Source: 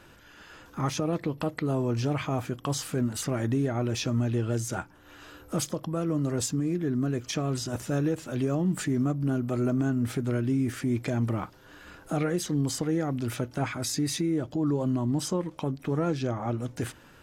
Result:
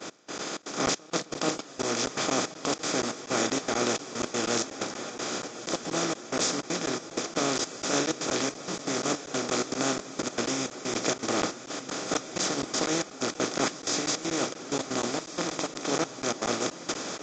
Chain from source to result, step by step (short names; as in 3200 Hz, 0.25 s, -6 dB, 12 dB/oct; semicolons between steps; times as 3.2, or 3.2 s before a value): per-bin compression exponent 0.2; HPF 280 Hz 12 dB/oct; notches 50/100/150/200/250/300/350/400/450/500 Hz; expander -17 dBFS; dynamic EQ 6100 Hz, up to +4 dB, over -45 dBFS, Q 1; step gate "x..xxx.xxx..x.xx" 159 bpm -24 dB; diffused feedback echo 1.326 s, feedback 45%, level -12 dB; crackling interface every 0.24 s, samples 512, zero, from 0.38; Vorbis 48 kbps 16000 Hz